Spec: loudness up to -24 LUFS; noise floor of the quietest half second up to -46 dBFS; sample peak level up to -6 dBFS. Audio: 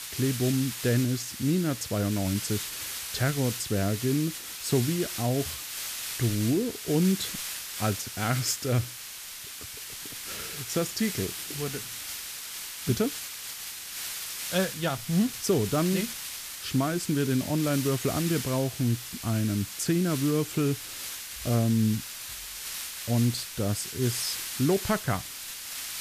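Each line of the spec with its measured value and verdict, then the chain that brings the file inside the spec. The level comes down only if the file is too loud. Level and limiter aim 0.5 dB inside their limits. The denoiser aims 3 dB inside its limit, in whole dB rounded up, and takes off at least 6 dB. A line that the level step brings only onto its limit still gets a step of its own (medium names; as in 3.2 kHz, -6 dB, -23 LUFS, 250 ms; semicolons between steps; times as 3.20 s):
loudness -29.0 LUFS: pass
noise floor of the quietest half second -41 dBFS: fail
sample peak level -12.0 dBFS: pass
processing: noise reduction 8 dB, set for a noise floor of -41 dBFS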